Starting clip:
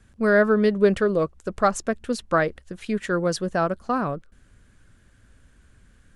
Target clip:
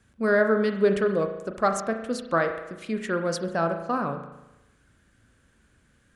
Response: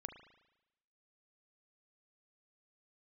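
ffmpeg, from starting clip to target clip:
-filter_complex "[0:a]highpass=frequency=120:poles=1[link_01];[1:a]atrim=start_sample=2205[link_02];[link_01][link_02]afir=irnorm=-1:irlink=0,volume=2dB"

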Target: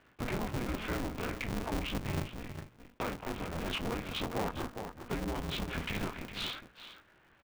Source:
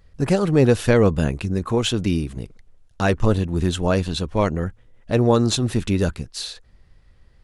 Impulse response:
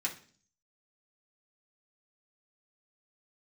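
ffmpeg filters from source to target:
-filter_complex "[0:a]flanger=delay=18:depth=5.9:speed=3,alimiter=limit=-15dB:level=0:latency=1,asettb=1/sr,asplit=3[link_01][link_02][link_03];[link_01]atrim=end=4.234[link_04];[link_02]atrim=start=4.23:end=4.64,asetpts=PTS-STARTPTS,afade=type=in:duration=0.004:curve=qsin,afade=type=out:start_time=0.406:duration=0.004:curve=qsin,equalizer=frequency=960:width_type=o:width=2:gain=14[link_05];[link_03]atrim=start=4.636[link_06];[link_04][link_05]acrossfade=duration=0.004:curve1=hsin:curve2=qsin[link_07];[link_07][link_06]acrossfade=duration=0.004:curve1=qsin:curve2=hsin,bandreject=frequency=60:width_type=h:width=6,bandreject=frequency=120:width_type=h:width=6,bandreject=frequency=180:width_type=h:width=6,bandreject=frequency=240:width_type=h:width=6,bandreject=frequency=300:width_type=h:width=6,bandreject=frequency=360:width_type=h:width=6,bandreject=frequency=420:width_type=h:width=6,asettb=1/sr,asplit=3[link_08][link_09][link_10];[link_08]atrim=end=3.094[link_11];[link_09]atrim=start=3.09:end=3.69,asetpts=PTS-STARTPTS,afade=type=in:duration=0.004:curve=qsin,afade=type=out:start_time=0.596:duration=0.004:curve=qsin,volume=27.5dB,asoftclip=hard,volume=-27.5dB[link_12];[link_10]atrim=start=3.686[link_13];[link_11][link_12]acrossfade=duration=0.004:curve1=hsin:curve2=qsin[link_14];[link_14][link_13]acrossfade=duration=0.004:curve1=qsin:curve2=hsin,highpass=frequency=340:width_type=q:width=0.5412,highpass=frequency=340:width_type=q:width=1.307,lowpass=frequency=3300:width_type=q:width=0.5176,lowpass=frequency=3300:width_type=q:width=0.7071,lowpass=frequency=3300:width_type=q:width=1.932,afreqshift=-300,asettb=1/sr,asplit=3[link_15][link_16][link_17];[link_15]atrim=end=1.484[link_18];[link_16]atrim=start=1.48:end=2.26,asetpts=PTS-STARTPTS,afade=type=in:duration=0.004:curve=qsin,afade=type=out:start_time=0.776:duration=0.004:curve=qsin,lowshelf=frequency=330:gain=11[link_19];[link_17]atrim=start=2.256[link_20];[link_18][link_19]acrossfade=duration=0.004:curve1=hsin:curve2=qsin[link_21];[link_21][link_20]acrossfade=duration=0.004:curve1=qsin:curve2=hsin,acompressor=threshold=-39dB:ratio=4,asplit=2[link_22][link_23];[link_23]adelay=408.2,volume=-10dB,highshelf=frequency=4000:gain=-9.18[link_24];[link_22][link_24]amix=inputs=2:normalize=0,asplit=2[link_25][link_26];[1:a]atrim=start_sample=2205[link_27];[link_26][link_27]afir=irnorm=-1:irlink=0,volume=-15dB[link_28];[link_25][link_28]amix=inputs=2:normalize=0,asoftclip=type=tanh:threshold=-33dB,aeval=exprs='val(0)*sgn(sin(2*PI*120*n/s))':channel_layout=same,volume=6.5dB"

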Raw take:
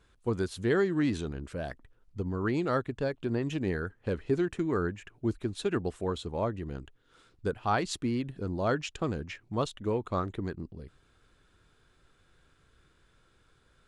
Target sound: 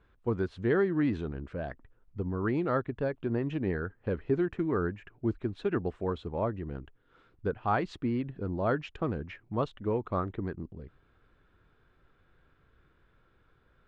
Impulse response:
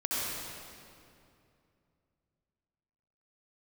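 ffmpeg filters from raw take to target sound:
-af "lowpass=2200"

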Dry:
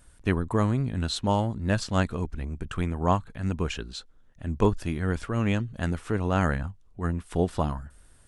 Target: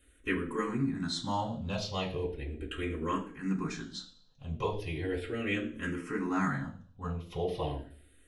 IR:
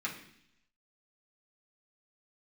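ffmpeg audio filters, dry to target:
-filter_complex "[0:a]acrossover=split=590[link_01][link_02];[link_01]alimiter=limit=-20.5dB:level=0:latency=1:release=88[link_03];[link_03][link_02]amix=inputs=2:normalize=0[link_04];[1:a]atrim=start_sample=2205,asetrate=66150,aresample=44100[link_05];[link_04][link_05]afir=irnorm=-1:irlink=0,asplit=2[link_06][link_07];[link_07]afreqshift=-0.37[link_08];[link_06][link_08]amix=inputs=2:normalize=1"

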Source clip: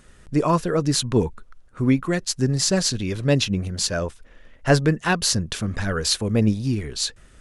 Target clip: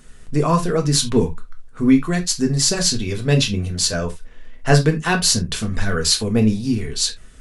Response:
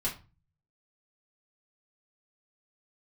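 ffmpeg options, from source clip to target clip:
-filter_complex "[0:a]asplit=2[link_01][link_02];[1:a]atrim=start_sample=2205,atrim=end_sample=3969,highshelf=frequency=4100:gain=9.5[link_03];[link_02][link_03]afir=irnorm=-1:irlink=0,volume=-5dB[link_04];[link_01][link_04]amix=inputs=2:normalize=0,volume=-2.5dB"

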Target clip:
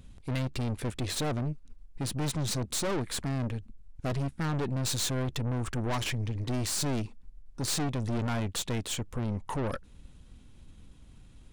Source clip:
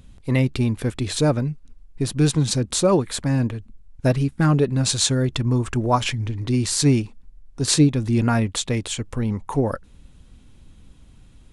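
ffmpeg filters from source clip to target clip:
ffmpeg -i in.wav -af "aeval=exprs='(tanh(22.4*val(0)+0.55)-tanh(0.55))/22.4':channel_layout=same,volume=-1.5dB" out.wav

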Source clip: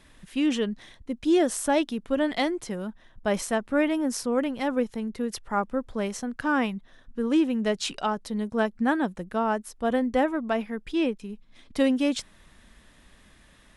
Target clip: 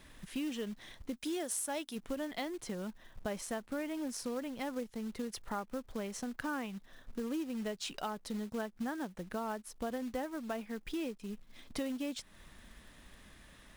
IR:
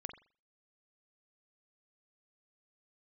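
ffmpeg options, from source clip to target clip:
-filter_complex "[0:a]asplit=3[link_01][link_02][link_03];[link_01]afade=type=out:start_time=1.16:duration=0.02[link_04];[link_02]aemphasis=mode=production:type=bsi,afade=type=in:start_time=1.16:duration=0.02,afade=type=out:start_time=1.95:duration=0.02[link_05];[link_03]afade=type=in:start_time=1.95:duration=0.02[link_06];[link_04][link_05][link_06]amix=inputs=3:normalize=0,acompressor=threshold=-36dB:ratio=4,acrusher=bits=4:mode=log:mix=0:aa=0.000001,volume=-1.5dB"

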